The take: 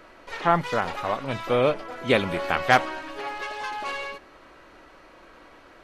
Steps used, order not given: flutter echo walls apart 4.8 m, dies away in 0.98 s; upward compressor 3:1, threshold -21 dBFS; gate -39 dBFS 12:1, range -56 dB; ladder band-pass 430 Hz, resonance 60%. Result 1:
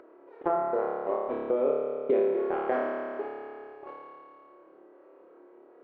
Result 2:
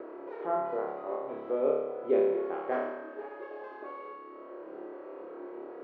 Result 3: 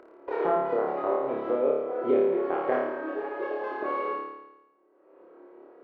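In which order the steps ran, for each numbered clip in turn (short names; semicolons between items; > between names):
ladder band-pass > gate > flutter echo > upward compressor; flutter echo > upward compressor > gate > ladder band-pass; gate > ladder band-pass > upward compressor > flutter echo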